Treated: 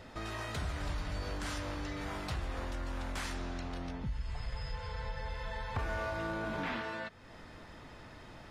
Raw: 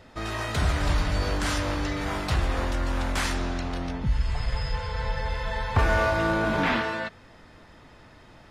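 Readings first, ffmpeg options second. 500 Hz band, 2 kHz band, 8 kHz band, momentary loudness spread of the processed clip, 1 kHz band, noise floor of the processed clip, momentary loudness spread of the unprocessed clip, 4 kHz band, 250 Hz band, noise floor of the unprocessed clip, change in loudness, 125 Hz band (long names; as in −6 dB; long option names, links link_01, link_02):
−12.0 dB, −12.0 dB, −11.5 dB, 15 LU, −12.0 dB, −52 dBFS, 7 LU, −11.5 dB, −11.5 dB, −51 dBFS, −12.0 dB, −12.0 dB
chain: -af "acompressor=threshold=-45dB:ratio=2"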